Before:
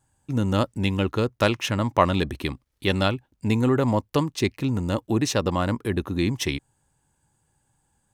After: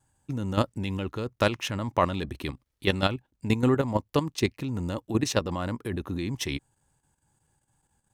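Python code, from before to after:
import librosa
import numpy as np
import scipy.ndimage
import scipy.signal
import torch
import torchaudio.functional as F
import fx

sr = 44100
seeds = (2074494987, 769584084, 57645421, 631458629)

y = fx.level_steps(x, sr, step_db=10)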